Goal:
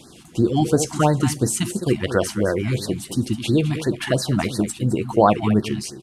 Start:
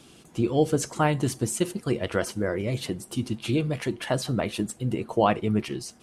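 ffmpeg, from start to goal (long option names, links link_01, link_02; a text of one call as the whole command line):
ffmpeg -i in.wav -af "aecho=1:1:210:0.237,afftfilt=real='re*(1-between(b*sr/1024,440*pow(2800/440,0.5+0.5*sin(2*PI*2.9*pts/sr))/1.41,440*pow(2800/440,0.5+0.5*sin(2*PI*2.9*pts/sr))*1.41))':imag='im*(1-between(b*sr/1024,440*pow(2800/440,0.5+0.5*sin(2*PI*2.9*pts/sr))/1.41,440*pow(2800/440,0.5+0.5*sin(2*PI*2.9*pts/sr))*1.41))':win_size=1024:overlap=0.75,volume=6.5dB" out.wav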